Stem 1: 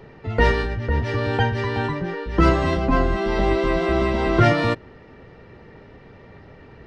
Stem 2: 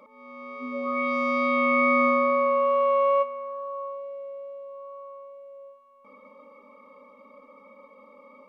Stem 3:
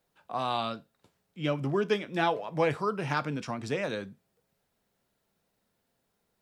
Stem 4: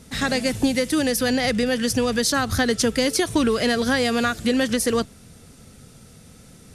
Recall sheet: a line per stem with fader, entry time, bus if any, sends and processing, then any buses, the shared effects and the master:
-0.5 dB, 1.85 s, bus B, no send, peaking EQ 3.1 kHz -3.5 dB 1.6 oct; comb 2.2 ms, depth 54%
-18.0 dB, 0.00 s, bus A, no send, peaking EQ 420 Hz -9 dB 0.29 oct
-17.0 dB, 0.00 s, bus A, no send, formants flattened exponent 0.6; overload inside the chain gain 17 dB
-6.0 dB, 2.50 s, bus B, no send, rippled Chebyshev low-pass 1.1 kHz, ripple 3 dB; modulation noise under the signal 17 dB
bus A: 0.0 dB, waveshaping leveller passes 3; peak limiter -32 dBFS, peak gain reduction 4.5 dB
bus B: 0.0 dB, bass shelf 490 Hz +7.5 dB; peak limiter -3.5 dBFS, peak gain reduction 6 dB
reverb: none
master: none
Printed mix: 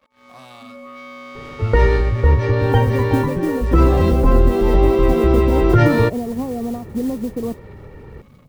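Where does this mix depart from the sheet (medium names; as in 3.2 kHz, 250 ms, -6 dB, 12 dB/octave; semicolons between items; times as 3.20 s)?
stem 1: entry 1.85 s -> 1.35 s; stem 2 -18.0 dB -> -10.5 dB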